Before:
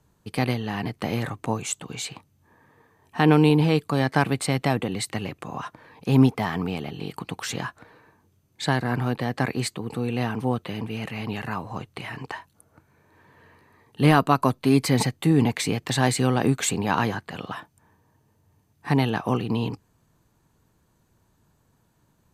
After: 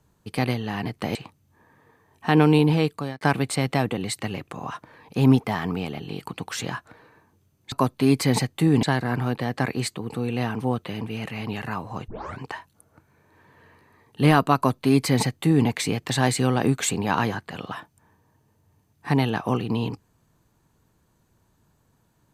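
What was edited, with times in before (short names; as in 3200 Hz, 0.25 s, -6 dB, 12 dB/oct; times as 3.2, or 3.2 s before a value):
1.15–2.06 cut
3.59–4.12 fade out equal-power
11.88 tape start 0.32 s
14.36–15.47 copy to 8.63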